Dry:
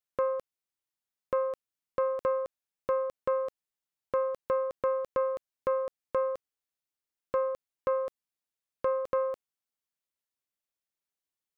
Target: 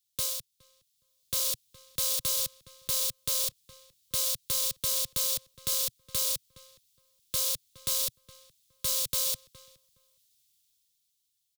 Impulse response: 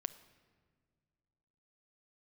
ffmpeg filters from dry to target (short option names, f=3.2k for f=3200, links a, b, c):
-filter_complex "[0:a]acrossover=split=150[a][b];[b]acontrast=75[c];[a][c]amix=inputs=2:normalize=0,tiltshelf=f=840:g=7.5,acrusher=bits=6:mode=log:mix=0:aa=0.000001,dynaudnorm=f=130:g=17:m=15dB,firequalizer=gain_entry='entry(120,0);entry(250,-20);entry(520,-30);entry(820,-27);entry(1300,-16);entry(2200,-1);entry(3500,14)':delay=0.05:min_phase=1,asplit=2[d][e];[e]adelay=416,lowpass=f=2.3k:p=1,volume=-23dB,asplit=2[f][g];[g]adelay=416,lowpass=f=2.3k:p=1,volume=0.16[h];[f][h]amix=inputs=2:normalize=0[i];[d][i]amix=inputs=2:normalize=0,alimiter=limit=-16dB:level=0:latency=1:release=97"